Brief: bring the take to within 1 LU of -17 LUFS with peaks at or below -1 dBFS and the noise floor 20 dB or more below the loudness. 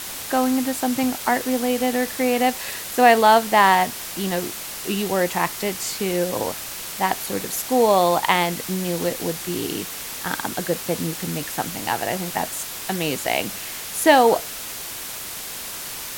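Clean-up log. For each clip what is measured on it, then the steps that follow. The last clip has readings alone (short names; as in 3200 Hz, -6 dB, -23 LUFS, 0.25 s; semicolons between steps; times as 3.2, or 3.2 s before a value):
noise floor -33 dBFS; noise floor target -42 dBFS; loudness -22.0 LUFS; peak -1.5 dBFS; loudness target -17.0 LUFS
-> denoiser 9 dB, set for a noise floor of -33 dBFS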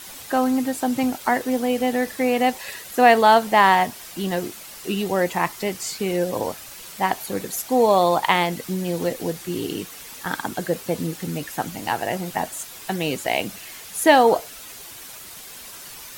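noise floor -40 dBFS; noise floor target -42 dBFS
-> denoiser 6 dB, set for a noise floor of -40 dBFS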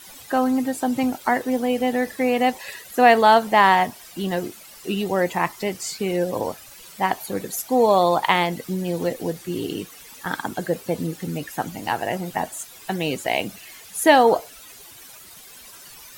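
noise floor -44 dBFS; loudness -22.0 LUFS; peak -2.0 dBFS; loudness target -17.0 LUFS
-> gain +5 dB; limiter -1 dBFS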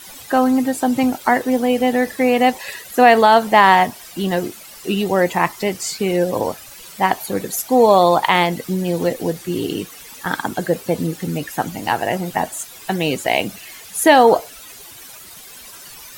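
loudness -17.5 LUFS; peak -1.0 dBFS; noise floor -39 dBFS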